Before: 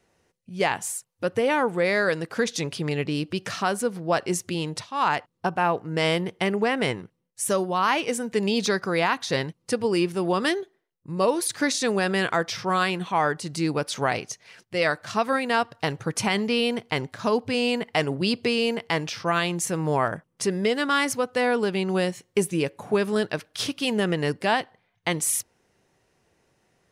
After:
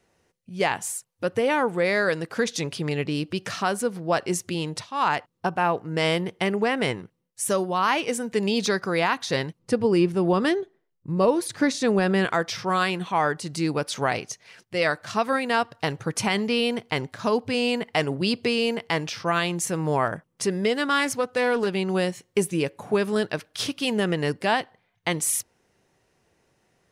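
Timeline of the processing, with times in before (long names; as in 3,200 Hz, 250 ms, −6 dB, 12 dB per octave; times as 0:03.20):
0:09.59–0:12.25: spectral tilt −2 dB per octave
0:21.00–0:21.67: highs frequency-modulated by the lows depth 0.15 ms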